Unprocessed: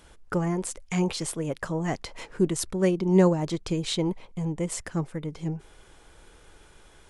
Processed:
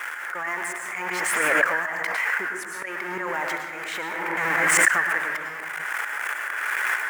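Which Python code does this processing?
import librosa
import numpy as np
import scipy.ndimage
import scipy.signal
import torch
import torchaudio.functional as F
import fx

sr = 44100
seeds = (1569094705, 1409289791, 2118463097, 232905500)

y = x + 0.5 * 10.0 ** (-30.5 / 20.0) * np.sign(x)
y = scipy.signal.sosfilt(scipy.signal.butter(2, 1500.0, 'highpass', fs=sr, output='sos'), y)
y = fx.high_shelf_res(y, sr, hz=2700.0, db=-13.5, q=3.0)
y = fx.transient(y, sr, attack_db=9, sustain_db=5)
y = fx.rider(y, sr, range_db=4, speed_s=2.0)
y = fx.auto_swell(y, sr, attack_ms=217.0)
y = fx.rev_plate(y, sr, seeds[0], rt60_s=0.85, hf_ratio=0.5, predelay_ms=95, drr_db=3.0)
y = fx.pre_swell(y, sr, db_per_s=20.0)
y = y * 10.0 ** (8.5 / 20.0)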